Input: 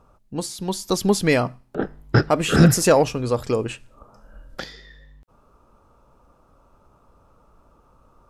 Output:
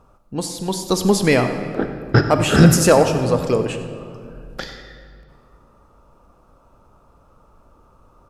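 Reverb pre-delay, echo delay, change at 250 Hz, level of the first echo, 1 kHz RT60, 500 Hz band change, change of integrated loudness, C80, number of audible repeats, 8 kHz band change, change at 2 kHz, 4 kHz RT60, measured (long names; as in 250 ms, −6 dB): 35 ms, 95 ms, +3.5 dB, −15.5 dB, 2.2 s, +3.5 dB, +3.0 dB, 8.5 dB, 1, +3.0 dB, +3.0 dB, 1.4 s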